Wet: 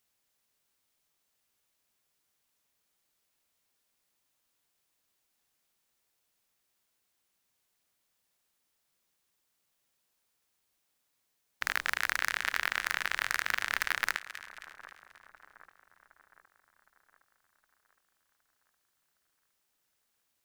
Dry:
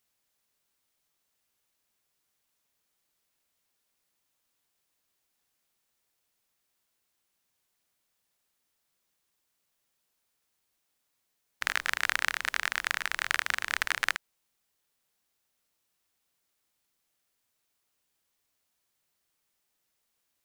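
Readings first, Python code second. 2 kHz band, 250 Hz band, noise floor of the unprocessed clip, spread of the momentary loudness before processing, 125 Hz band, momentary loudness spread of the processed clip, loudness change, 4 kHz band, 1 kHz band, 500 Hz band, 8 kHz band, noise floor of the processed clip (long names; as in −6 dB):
−1.5 dB, +0.5 dB, −79 dBFS, 4 LU, can't be measured, 15 LU, −1.5 dB, −3.0 dB, −1.0 dB, −1.0 dB, −2.5 dB, −79 dBFS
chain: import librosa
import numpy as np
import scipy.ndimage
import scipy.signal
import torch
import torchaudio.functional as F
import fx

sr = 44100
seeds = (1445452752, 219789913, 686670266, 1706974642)

y = fx.echo_split(x, sr, split_hz=1400.0, low_ms=764, high_ms=268, feedback_pct=52, wet_db=-16.0)
y = 10.0 ** (-12.0 / 20.0) * (np.abs((y / 10.0 ** (-12.0 / 20.0) + 3.0) % 4.0 - 2.0) - 1.0)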